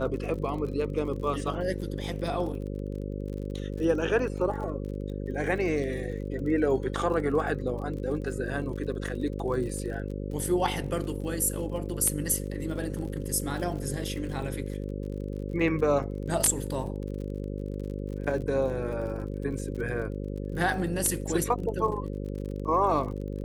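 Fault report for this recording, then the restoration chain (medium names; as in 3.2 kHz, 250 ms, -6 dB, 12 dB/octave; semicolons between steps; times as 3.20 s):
buzz 50 Hz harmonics 11 -34 dBFS
crackle 42 per s -37 dBFS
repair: de-click; de-hum 50 Hz, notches 11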